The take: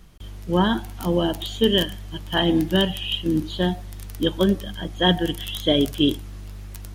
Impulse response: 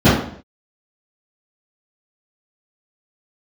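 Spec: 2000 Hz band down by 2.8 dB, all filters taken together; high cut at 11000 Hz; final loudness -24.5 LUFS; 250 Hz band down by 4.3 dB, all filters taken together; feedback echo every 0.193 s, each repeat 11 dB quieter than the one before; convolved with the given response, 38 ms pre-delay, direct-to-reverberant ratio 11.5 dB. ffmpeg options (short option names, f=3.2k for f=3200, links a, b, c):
-filter_complex "[0:a]lowpass=11k,equalizer=f=250:t=o:g=-6.5,equalizer=f=2k:t=o:g=-3.5,aecho=1:1:193|386|579:0.282|0.0789|0.0221,asplit=2[a][b];[1:a]atrim=start_sample=2205,adelay=38[c];[b][c]afir=irnorm=-1:irlink=0,volume=-38.5dB[d];[a][d]amix=inputs=2:normalize=0,volume=-1dB"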